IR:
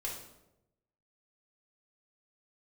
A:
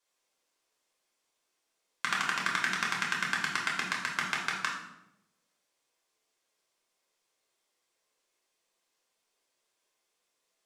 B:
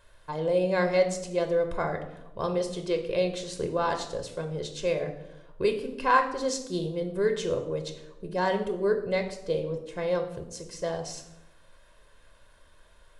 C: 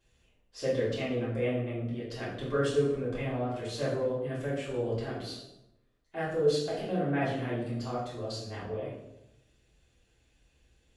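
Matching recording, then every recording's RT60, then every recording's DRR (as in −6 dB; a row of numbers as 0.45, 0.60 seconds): A; 0.90, 0.90, 0.90 seconds; −3.5, 5.0, −8.0 decibels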